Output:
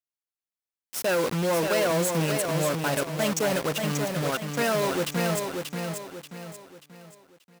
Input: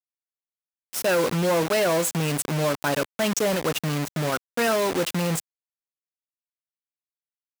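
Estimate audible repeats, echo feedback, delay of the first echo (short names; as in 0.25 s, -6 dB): 4, 39%, 0.584 s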